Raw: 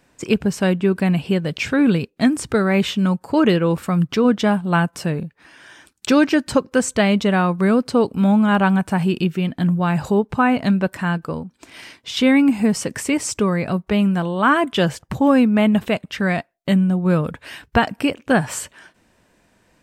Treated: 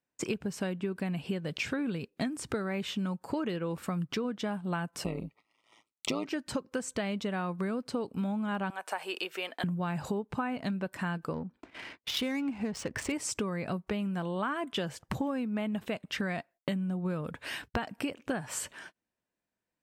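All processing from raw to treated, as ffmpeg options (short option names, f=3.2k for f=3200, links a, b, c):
-filter_complex "[0:a]asettb=1/sr,asplit=3[a][b][c];[a]atrim=end=5.044[d];[b]atrim=start=5.04:end=6.26,asetpts=PTS-STARTPTS,afade=t=in:d=0.004:c=qsin,afade=t=out:st=1.216:d=0.004:c=qsin,equalizer=f=1.2k:t=o:w=3:g=5,tremolo=f=110:d=0.824,asuperstop=centerf=1600:order=12:qfactor=2.8[e];[c]atrim=start=6.256[f];[d][e]acrossfade=d=0.004:c1=hsin:c2=qsin[g];[g][f]acrossfade=d=0.004:c1=qsin:c2=hsin,asettb=1/sr,asplit=3[h][i][j];[h]atrim=end=8.704[k];[i]atrim=start=8.7:end=9.64,asetpts=PTS-STARTPTS,afade=t=in:d=0.004:c=qsin,afade=t=out:st=0.936:d=0.004:c=qsin,highpass=f=490:w=0.5412,highpass=f=490:w=1.3066,agate=range=-33dB:threshold=-50dB:ratio=3:release=100:detection=peak[l];[j]atrim=start=9.636[m];[k][l]acrossfade=d=0.004:c1=hsin:c2=qsin[n];[n][m]acrossfade=d=0.004:c1=qsin:c2=hsin,asettb=1/sr,asplit=3[o][p][q];[o]atrim=end=11.334[r];[p]atrim=start=11.33:end=13.12,asetpts=PTS-STARTPTS,afade=t=in:d=0.004:c=qsin,afade=t=out:st=1.786:d=0.004:c=qsin,asubboost=boost=11:cutoff=72,adynamicsmooth=sensitivity=4.5:basefreq=2k[s];[q]atrim=start=13.116[t];[r][s]acrossfade=d=0.004:c1=hsin:c2=qsin[u];[u][t]acrossfade=d=0.004:c1=qsin:c2=hsin,agate=range=-28dB:threshold=-45dB:ratio=16:detection=peak,lowshelf=f=82:g=-8,acompressor=threshold=-28dB:ratio=10,volume=-2dB"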